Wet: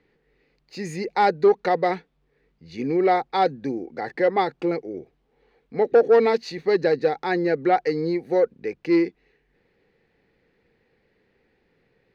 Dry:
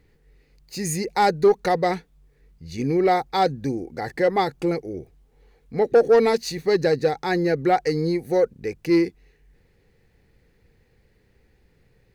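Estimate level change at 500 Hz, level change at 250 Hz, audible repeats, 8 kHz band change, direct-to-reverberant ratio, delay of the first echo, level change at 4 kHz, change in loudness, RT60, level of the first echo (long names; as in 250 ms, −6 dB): 0.0 dB, −1.0 dB, no echo audible, below −10 dB, no reverb audible, no echo audible, −4.0 dB, −0.5 dB, no reverb audible, no echo audible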